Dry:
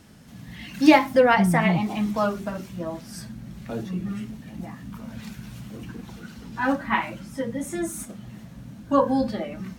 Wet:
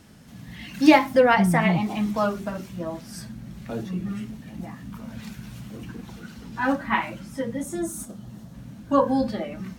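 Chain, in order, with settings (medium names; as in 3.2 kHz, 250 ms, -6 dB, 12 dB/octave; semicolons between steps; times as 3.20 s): 7.63–8.54 s: peaking EQ 2.2 kHz -10 dB 0.9 oct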